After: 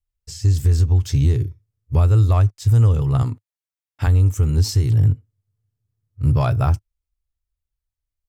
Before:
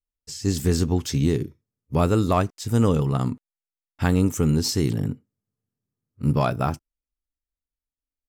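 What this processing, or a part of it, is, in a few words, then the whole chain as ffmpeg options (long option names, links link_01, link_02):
car stereo with a boomy subwoofer: -filter_complex "[0:a]asettb=1/sr,asplit=3[link_01][link_02][link_03];[link_01]atrim=end=3.224[link_04];[link_02]atrim=start=3.22:end=4.07,asetpts=PTS-STARTPTS,afade=type=in:duration=0.004:curve=qsin,afade=type=out:start_time=0.846:duration=0.004:curve=qsin,highpass=170[link_05];[link_03]atrim=start=4.066[link_06];[link_04][link_05]acrossfade=duration=0.004:curve1=hsin:curve2=qsin[link_07];[link_07][link_06]acrossfade=duration=0.004:curve1=qsin:curve2=hsin,lowshelf=frequency=140:width_type=q:width=3:gain=10.5,alimiter=limit=-8dB:level=0:latency=1:release=272"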